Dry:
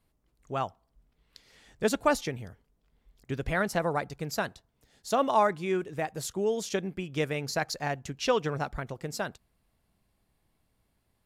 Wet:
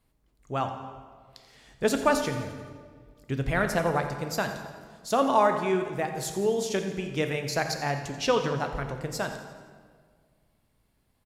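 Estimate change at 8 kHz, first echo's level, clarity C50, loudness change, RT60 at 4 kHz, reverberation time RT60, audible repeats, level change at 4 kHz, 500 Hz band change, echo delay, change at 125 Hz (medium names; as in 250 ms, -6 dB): +2.5 dB, -14.0 dB, 7.0 dB, +2.5 dB, 1.2 s, 1.7 s, 2, +2.5 dB, +2.5 dB, 86 ms, +3.5 dB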